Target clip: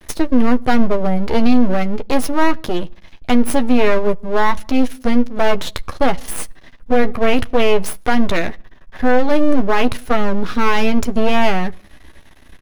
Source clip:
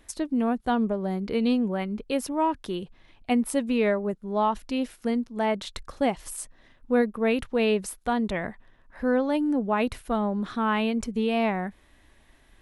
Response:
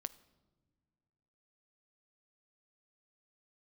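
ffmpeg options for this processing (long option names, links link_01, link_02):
-filter_complex "[0:a]aeval=exprs='max(val(0),0)':channel_layout=same,equalizer=frequency=8400:width_type=o:width=0.26:gain=-4.5,bandreject=frequency=7500:width=15,asplit=2[link_01][link_02];[link_02]adelay=12,volume=-9dB[link_03];[link_01][link_03]amix=inputs=2:normalize=0,asplit=2[link_04][link_05];[1:a]atrim=start_sample=2205,afade=type=out:start_time=0.26:duration=0.01,atrim=end_sample=11907,lowshelf=frequency=450:gain=6.5[link_06];[link_05][link_06]afir=irnorm=-1:irlink=0,volume=-6.5dB[link_07];[link_04][link_07]amix=inputs=2:normalize=0,alimiter=level_in=13dB:limit=-1dB:release=50:level=0:latency=1,volume=-1dB"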